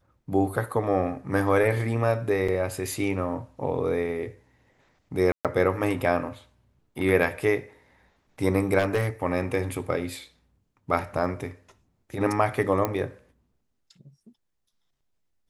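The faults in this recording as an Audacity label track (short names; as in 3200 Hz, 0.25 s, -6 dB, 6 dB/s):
2.480000	2.480000	gap 4.9 ms
5.320000	5.450000	gap 0.127 s
8.780000	9.080000	clipped -18.5 dBFS
12.850000	12.850000	pop -12 dBFS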